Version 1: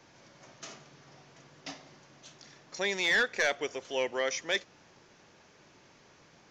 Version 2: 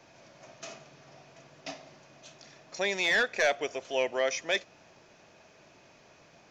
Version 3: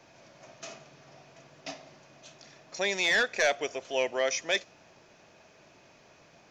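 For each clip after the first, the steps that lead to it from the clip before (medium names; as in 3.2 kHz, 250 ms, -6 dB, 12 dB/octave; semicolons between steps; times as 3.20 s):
small resonant body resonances 650/2500 Hz, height 9 dB, ringing for 25 ms
dynamic bell 6.5 kHz, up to +4 dB, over -44 dBFS, Q 0.78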